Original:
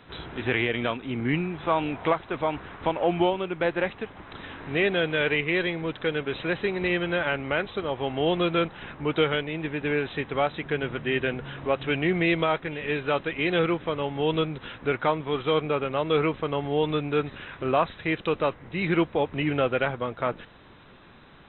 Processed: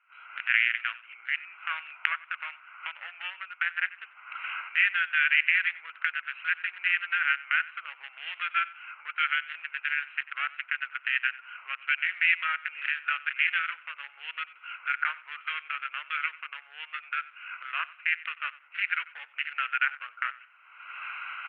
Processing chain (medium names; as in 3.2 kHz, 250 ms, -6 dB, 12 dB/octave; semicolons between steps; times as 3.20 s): local Wiener filter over 25 samples; recorder AGC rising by 42 dB/s; elliptic band-pass 1.4–2.8 kHz, stop band 80 dB; on a send: feedback delay 93 ms, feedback 32%, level -19 dB; on the sum: tape noise reduction on one side only decoder only; trim +7 dB